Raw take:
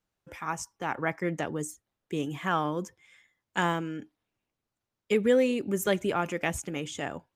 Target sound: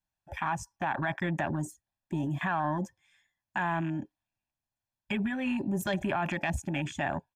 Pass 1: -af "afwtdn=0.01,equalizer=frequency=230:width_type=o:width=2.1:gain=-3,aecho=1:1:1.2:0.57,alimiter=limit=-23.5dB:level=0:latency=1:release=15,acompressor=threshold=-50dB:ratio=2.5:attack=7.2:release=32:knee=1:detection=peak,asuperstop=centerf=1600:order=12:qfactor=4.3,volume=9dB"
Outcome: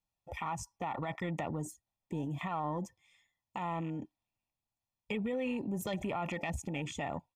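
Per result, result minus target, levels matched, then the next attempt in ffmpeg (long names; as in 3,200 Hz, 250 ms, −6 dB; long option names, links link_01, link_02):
downward compressor: peak gain reduction +5.5 dB; 2,000 Hz band −4.0 dB
-af "afwtdn=0.01,equalizer=frequency=230:width_type=o:width=2.1:gain=-3,aecho=1:1:1.2:0.57,alimiter=limit=-23.5dB:level=0:latency=1:release=15,acompressor=threshold=-40.5dB:ratio=2.5:attack=7.2:release=32:knee=1:detection=peak,asuperstop=centerf=1600:order=12:qfactor=4.3,volume=9dB"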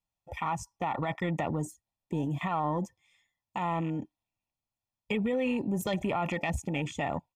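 2,000 Hz band −4.5 dB
-af "afwtdn=0.01,equalizer=frequency=230:width_type=o:width=2.1:gain=-3,aecho=1:1:1.2:0.57,alimiter=limit=-23.5dB:level=0:latency=1:release=15,acompressor=threshold=-40.5dB:ratio=2.5:attack=7.2:release=32:knee=1:detection=peak,asuperstop=centerf=470:order=12:qfactor=4.3,volume=9dB"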